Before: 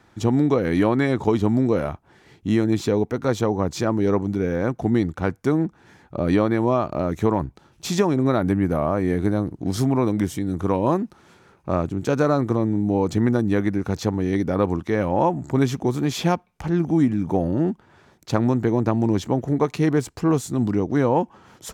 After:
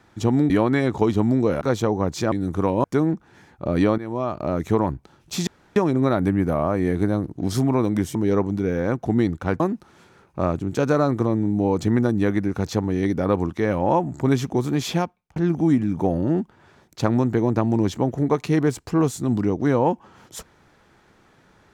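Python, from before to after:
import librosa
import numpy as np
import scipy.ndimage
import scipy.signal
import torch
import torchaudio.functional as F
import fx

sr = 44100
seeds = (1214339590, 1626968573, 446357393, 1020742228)

y = fx.edit(x, sr, fx.cut(start_s=0.5, length_s=0.26),
    fx.cut(start_s=1.87, length_s=1.33),
    fx.swap(start_s=3.91, length_s=1.45, other_s=10.38, other_length_s=0.52),
    fx.fade_in_from(start_s=6.5, length_s=0.55, floor_db=-14.5),
    fx.insert_room_tone(at_s=7.99, length_s=0.29),
    fx.fade_out_span(start_s=16.18, length_s=0.48), tone=tone)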